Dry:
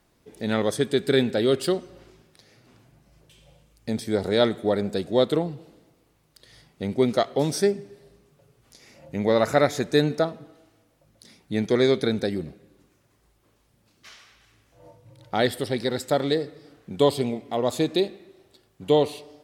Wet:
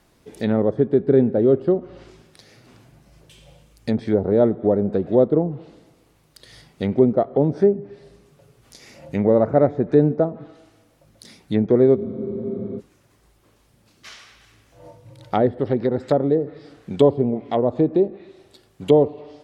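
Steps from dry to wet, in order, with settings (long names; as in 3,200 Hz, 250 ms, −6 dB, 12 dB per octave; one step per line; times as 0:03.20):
treble cut that deepens with the level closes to 630 Hz, closed at −21 dBFS
frozen spectrum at 0:11.97, 0.82 s
level +6 dB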